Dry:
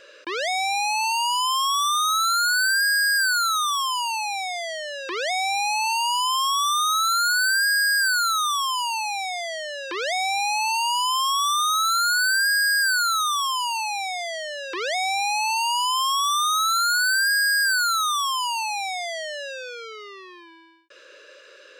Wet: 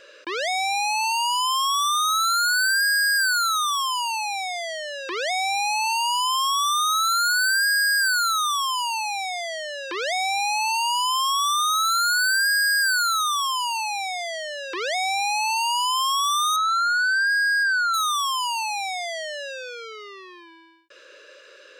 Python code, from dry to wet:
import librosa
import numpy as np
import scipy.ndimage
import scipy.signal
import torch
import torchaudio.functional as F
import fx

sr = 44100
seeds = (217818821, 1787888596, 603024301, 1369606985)

y = fx.spec_expand(x, sr, power=2.1, at=(16.56, 17.94))